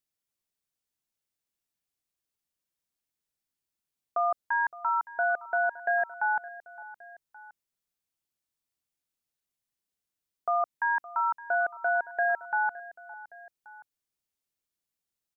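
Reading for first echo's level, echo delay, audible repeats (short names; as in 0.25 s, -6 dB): -18.0 dB, 0.565 s, 2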